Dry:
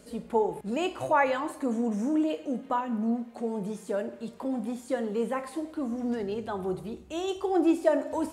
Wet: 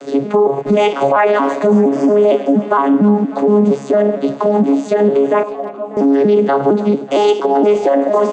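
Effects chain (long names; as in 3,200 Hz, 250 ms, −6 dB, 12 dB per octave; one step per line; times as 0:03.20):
vocoder with an arpeggio as carrier bare fifth, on C#3, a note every 231 ms
high-pass filter 340 Hz 12 dB per octave
downward compressor 2 to 1, threshold −36 dBFS, peak gain reduction 9 dB
0:05.43–0:05.97: formant filter a
far-end echo of a speakerphone 310 ms, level −19 dB
boost into a limiter +32 dB
feedback echo with a swinging delay time 596 ms, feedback 57%, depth 88 cents, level −21 dB
level −3.5 dB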